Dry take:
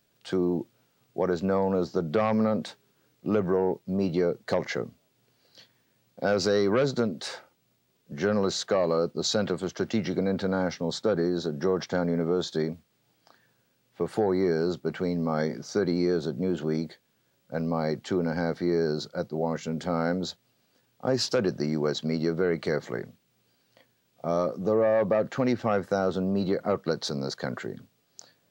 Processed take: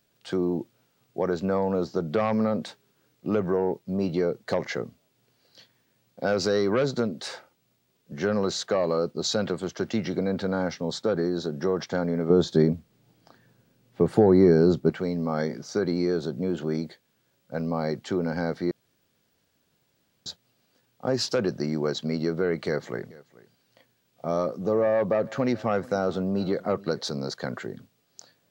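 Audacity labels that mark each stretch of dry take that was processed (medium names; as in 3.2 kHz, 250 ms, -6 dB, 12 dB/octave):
12.300000	14.900000	bass shelf 490 Hz +11.5 dB
18.710000	20.260000	room tone
22.670000	27.080000	delay 433 ms -21.5 dB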